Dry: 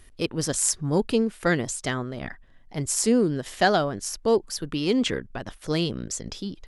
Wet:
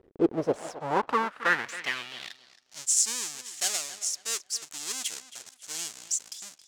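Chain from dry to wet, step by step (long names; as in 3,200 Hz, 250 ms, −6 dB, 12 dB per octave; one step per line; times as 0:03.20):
each half-wave held at its own peak
tape delay 270 ms, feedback 30%, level −13 dB, low-pass 4,600 Hz
band-pass filter sweep 400 Hz → 7,100 Hz, 0:00.25–0:02.88
level +3 dB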